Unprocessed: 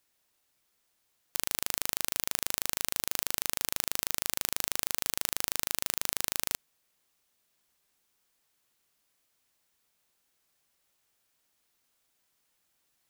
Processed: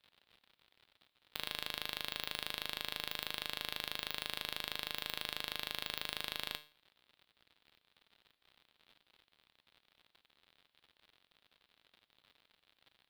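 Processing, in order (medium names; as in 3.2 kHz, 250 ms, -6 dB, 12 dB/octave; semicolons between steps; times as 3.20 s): feedback comb 150 Hz, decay 0.39 s, harmonics all, mix 70%; crackle 96 per s -51 dBFS; resonant high shelf 5 kHz -10.5 dB, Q 3; trim +2 dB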